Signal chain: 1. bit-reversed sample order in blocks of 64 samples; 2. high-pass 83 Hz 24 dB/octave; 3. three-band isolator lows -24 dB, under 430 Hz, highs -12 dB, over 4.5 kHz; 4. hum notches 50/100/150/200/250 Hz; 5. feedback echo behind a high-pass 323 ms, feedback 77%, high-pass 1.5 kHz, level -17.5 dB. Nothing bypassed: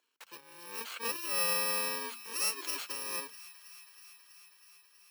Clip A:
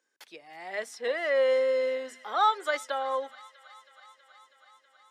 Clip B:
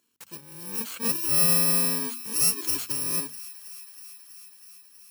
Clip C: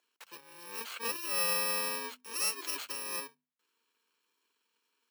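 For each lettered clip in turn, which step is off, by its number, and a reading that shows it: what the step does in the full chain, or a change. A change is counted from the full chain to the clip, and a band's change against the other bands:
1, 8 kHz band -18.5 dB; 3, 125 Hz band +17.0 dB; 5, echo-to-direct -16.5 dB to none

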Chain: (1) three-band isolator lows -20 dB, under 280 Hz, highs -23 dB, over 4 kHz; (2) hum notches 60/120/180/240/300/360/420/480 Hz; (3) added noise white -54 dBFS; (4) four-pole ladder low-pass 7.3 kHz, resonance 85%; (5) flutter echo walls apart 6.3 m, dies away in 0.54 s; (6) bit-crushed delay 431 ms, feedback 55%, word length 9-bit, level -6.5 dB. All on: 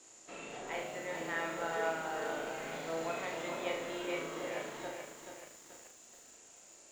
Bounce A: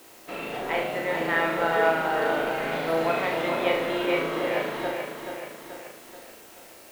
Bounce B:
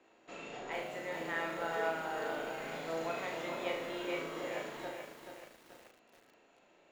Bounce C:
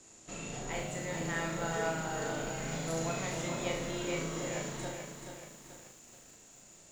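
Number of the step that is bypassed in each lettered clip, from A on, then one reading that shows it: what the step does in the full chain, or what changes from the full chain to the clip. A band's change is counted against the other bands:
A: 4, 8 kHz band -12.0 dB; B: 3, 8 kHz band -7.5 dB; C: 1, 125 Hz band +13.0 dB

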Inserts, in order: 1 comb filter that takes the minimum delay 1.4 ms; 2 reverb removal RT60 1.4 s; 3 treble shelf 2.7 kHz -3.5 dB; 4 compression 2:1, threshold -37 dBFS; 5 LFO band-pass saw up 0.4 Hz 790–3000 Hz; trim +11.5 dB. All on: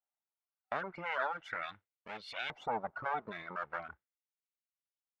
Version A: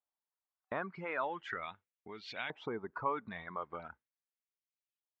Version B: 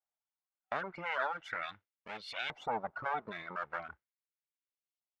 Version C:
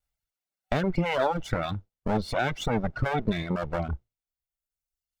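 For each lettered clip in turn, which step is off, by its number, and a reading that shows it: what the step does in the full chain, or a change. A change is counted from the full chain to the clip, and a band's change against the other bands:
1, 250 Hz band +6.5 dB; 3, 4 kHz band +2.0 dB; 5, 125 Hz band +16.5 dB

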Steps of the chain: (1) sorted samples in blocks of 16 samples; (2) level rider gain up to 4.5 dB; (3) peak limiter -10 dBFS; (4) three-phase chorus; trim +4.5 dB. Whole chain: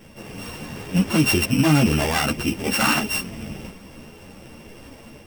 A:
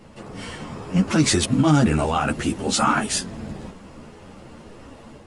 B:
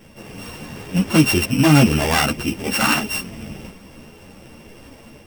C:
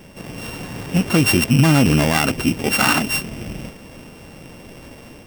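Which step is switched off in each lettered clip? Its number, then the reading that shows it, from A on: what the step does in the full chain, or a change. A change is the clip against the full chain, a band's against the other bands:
1, distortion -5 dB; 3, crest factor change +1.5 dB; 4, 125 Hz band +1.5 dB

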